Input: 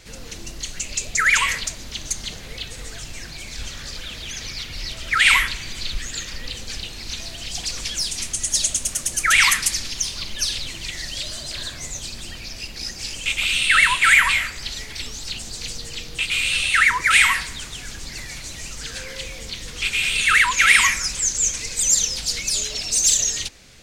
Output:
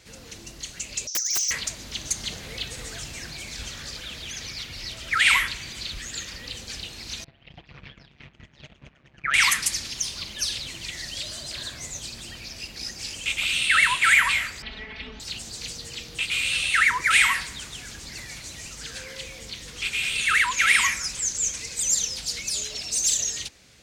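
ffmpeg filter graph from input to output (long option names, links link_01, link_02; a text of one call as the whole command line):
ffmpeg -i in.wav -filter_complex "[0:a]asettb=1/sr,asplit=3[link_01][link_02][link_03];[link_01]atrim=end=1.074[link_04];[link_02]atrim=start=1.07:end=1.51,asetpts=PTS-STARTPTS,afade=type=in:duration=0.004:curve=qsin,afade=type=out:start_time=0.436:duration=0.004:curve=qsin,asuperpass=centerf=5800:order=4:qfactor=7.2,aeval=exprs='0.15*sin(PI/2*10*val(0)/0.15)':channel_layout=same[link_05];[link_03]atrim=start=1.506[link_06];[link_04][link_05]acrossfade=duration=0.004:curve1=hsin:curve2=qsin[link_07];[link_07][link_06]acrossfade=duration=0.004:curve1=qsin:curve2=hsin,asettb=1/sr,asplit=3[link_08][link_09][link_10];[link_08]atrim=end=7.244[link_11];[link_09]atrim=start=7.24:end=9.34,asetpts=PTS-STARTPTS,afade=type=in:duration=0.004:curve=qsin,afade=type=out:start_time=2.096:duration=0.004:curve=qsin,lowpass=frequency=2600:width=0.5412,lowpass=frequency=2600:width=1.3066,agate=range=-13dB:threshold=-34dB:ratio=16:release=100:detection=peak,tremolo=f=140:d=0.824[link_12];[link_10]atrim=start=9.336[link_13];[link_11][link_12]acrossfade=duration=0.004:curve1=hsin:curve2=qsin[link_14];[link_14][link_13]acrossfade=duration=0.004:curve1=qsin:curve2=hsin,asettb=1/sr,asplit=3[link_15][link_16][link_17];[link_15]atrim=end=14.624[link_18];[link_16]atrim=start=14.62:end=15.2,asetpts=PTS-STARTPTS,afade=type=in:duration=0.004:curve=qsin,afade=type=out:start_time=0.576:duration=0.004:curve=qsin,lowpass=frequency=2900:width=0.5412,lowpass=frequency=2900:width=1.3066,aecho=1:1:4.6:0.97,atrim=end_sample=25578[link_19];[link_17]atrim=start=15.196[link_20];[link_18][link_19]acrossfade=duration=0.004:curve1=hsin:curve2=qsin[link_21];[link_21][link_20]acrossfade=duration=0.004:curve1=qsin:curve2=hsin,highpass=56,dynaudnorm=framelen=210:gausssize=21:maxgain=11.5dB,volume=-5.5dB" out.wav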